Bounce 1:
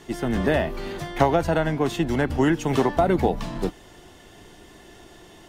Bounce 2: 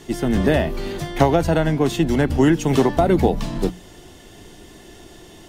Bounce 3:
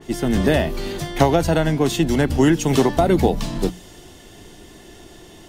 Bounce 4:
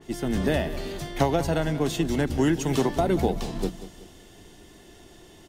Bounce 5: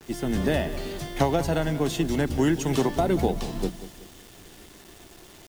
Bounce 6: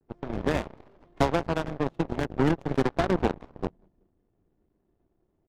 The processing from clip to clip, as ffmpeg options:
-af "equalizer=f=1200:t=o:w=2.5:g=-6,bandreject=f=60:t=h:w=6,bandreject=f=120:t=h:w=6,bandreject=f=180:t=h:w=6,volume=2.11"
-af "adynamicequalizer=threshold=0.0141:dfrequency=3000:dqfactor=0.7:tfrequency=3000:tqfactor=0.7:attack=5:release=100:ratio=0.375:range=2.5:mode=boostabove:tftype=highshelf"
-af "aecho=1:1:187|374|561|748:0.2|0.0818|0.0335|0.0138,volume=0.447"
-af "acrusher=bits=7:mix=0:aa=0.000001"
-af "adynamicsmooth=sensitivity=2.5:basefreq=510,aeval=exprs='0.335*(cos(1*acos(clip(val(0)/0.335,-1,1)))-cos(1*PI/2))+0.00841*(cos(5*acos(clip(val(0)/0.335,-1,1)))-cos(5*PI/2))+0.0119*(cos(6*acos(clip(val(0)/0.335,-1,1)))-cos(6*PI/2))+0.0596*(cos(7*acos(clip(val(0)/0.335,-1,1)))-cos(7*PI/2))':c=same,volume=0.891"

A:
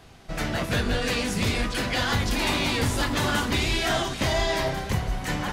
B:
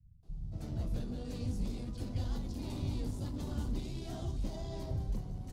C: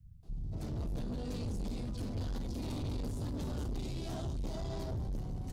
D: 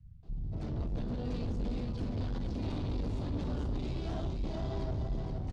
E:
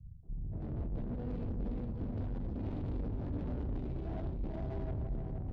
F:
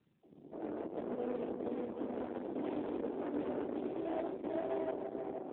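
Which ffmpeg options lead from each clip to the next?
-filter_complex "[0:a]firequalizer=gain_entry='entry(140,0);entry(430,-11);entry(1700,-29);entry(4400,-16)':delay=0.05:min_phase=1,asplit=2[s0][s1];[s1]asoftclip=type=hard:threshold=0.0299,volume=0.501[s2];[s0][s2]amix=inputs=2:normalize=0,acrossover=split=150[s3][s4];[s4]adelay=230[s5];[s3][s5]amix=inputs=2:normalize=0,volume=0.355"
-af "asoftclip=type=tanh:threshold=0.0112,volume=1.88"
-af "lowpass=3700,aecho=1:1:472:0.473,volume=1.26"
-af "areverse,acompressor=mode=upward:threshold=0.0158:ratio=2.5,areverse,equalizer=f=1200:w=3.7:g=-6,adynamicsmooth=sensitivity=6:basefreq=560,volume=0.75"
-af "highpass=f=320:w=0.5412,highpass=f=320:w=1.3066,volume=3.16" -ar 8000 -c:a libopencore_amrnb -b:a 7400

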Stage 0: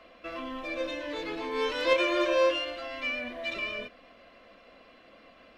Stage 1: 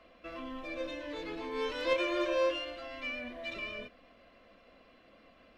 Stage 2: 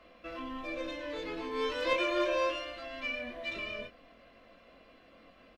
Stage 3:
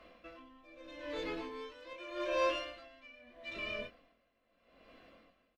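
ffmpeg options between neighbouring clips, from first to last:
-af "lowshelf=f=250:g=6.5,volume=0.473"
-filter_complex "[0:a]asplit=2[s0][s1];[s1]adelay=22,volume=0.473[s2];[s0][s2]amix=inputs=2:normalize=0,volume=1.12"
-af "aeval=exprs='val(0)*pow(10,-20*(0.5-0.5*cos(2*PI*0.8*n/s))/20)':c=same"

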